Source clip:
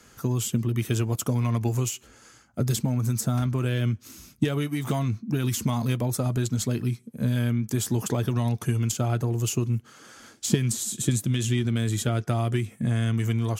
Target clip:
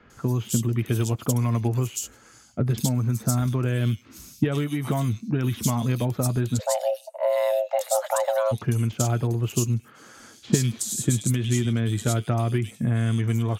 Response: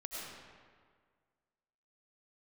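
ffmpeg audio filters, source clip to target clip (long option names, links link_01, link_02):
-filter_complex "[0:a]acrossover=split=3000[link_01][link_02];[link_02]adelay=100[link_03];[link_01][link_03]amix=inputs=2:normalize=0,asplit=3[link_04][link_05][link_06];[link_04]afade=type=out:start_time=6.59:duration=0.02[link_07];[link_05]afreqshift=420,afade=type=in:start_time=6.59:duration=0.02,afade=type=out:start_time=8.51:duration=0.02[link_08];[link_06]afade=type=in:start_time=8.51:duration=0.02[link_09];[link_07][link_08][link_09]amix=inputs=3:normalize=0,volume=1.5dB"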